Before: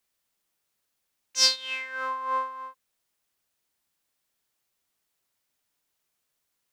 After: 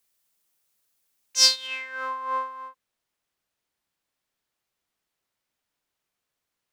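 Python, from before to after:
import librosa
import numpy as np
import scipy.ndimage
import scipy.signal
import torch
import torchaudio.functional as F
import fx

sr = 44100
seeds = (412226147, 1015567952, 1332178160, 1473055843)

y = fx.high_shelf(x, sr, hz=5500.0, db=fx.steps((0.0, 7.5), (1.66, -2.0), (2.68, -8.5)))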